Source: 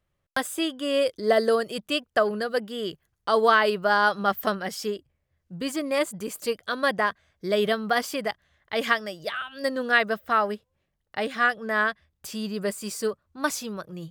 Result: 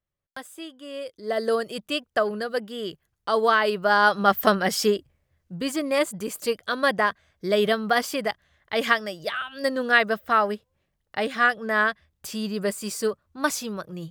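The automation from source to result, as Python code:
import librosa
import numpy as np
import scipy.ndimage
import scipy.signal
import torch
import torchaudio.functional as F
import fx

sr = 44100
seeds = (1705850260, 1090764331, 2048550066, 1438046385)

y = fx.gain(x, sr, db=fx.line((1.12, -11.5), (1.53, -1.0), (3.6, -1.0), (4.79, 9.0), (5.63, 2.0)))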